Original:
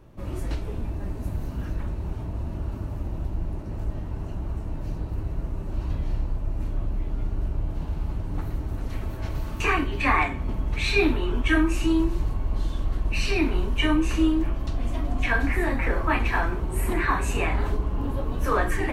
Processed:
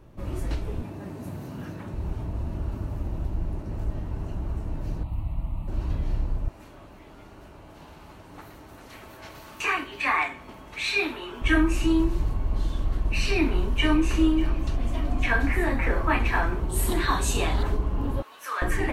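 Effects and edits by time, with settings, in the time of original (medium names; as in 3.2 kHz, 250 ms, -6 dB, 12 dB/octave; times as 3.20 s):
0.82–1.94 s: high-pass 110 Hz 24 dB/octave
5.03–5.68 s: static phaser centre 1.6 kHz, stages 6
6.48–11.42 s: high-pass 880 Hz 6 dB/octave
13.25–14.17 s: echo throw 590 ms, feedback 50%, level -16.5 dB
16.69–17.63 s: resonant high shelf 2.9 kHz +6.5 dB, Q 3
18.22–18.62 s: high-pass 1.4 kHz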